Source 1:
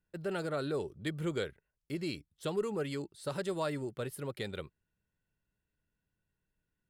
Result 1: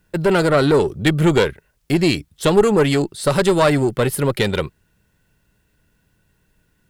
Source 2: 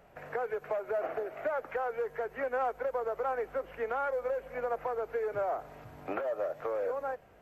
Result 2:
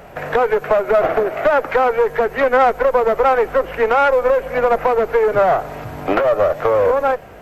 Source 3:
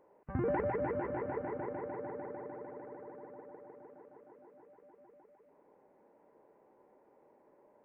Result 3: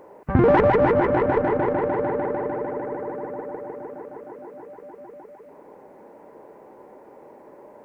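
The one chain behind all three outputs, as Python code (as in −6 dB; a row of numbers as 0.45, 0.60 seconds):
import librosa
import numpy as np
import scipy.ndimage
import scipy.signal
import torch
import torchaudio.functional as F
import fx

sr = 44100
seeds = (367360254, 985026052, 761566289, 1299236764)

y = fx.diode_clip(x, sr, knee_db=-33.5)
y = y * 10.0 ** (-2 / 20.0) / np.max(np.abs(y))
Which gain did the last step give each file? +22.0, +20.5, +19.0 decibels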